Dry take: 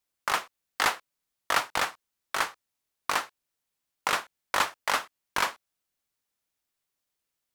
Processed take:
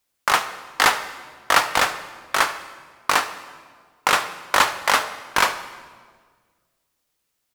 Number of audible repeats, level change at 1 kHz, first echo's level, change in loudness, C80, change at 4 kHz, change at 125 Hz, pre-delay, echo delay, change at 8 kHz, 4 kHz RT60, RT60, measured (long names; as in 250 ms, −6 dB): 1, +9.0 dB, −18.0 dB, +8.5 dB, 13.5 dB, +9.0 dB, +9.0 dB, 3 ms, 74 ms, +9.0 dB, 1.3 s, 1.7 s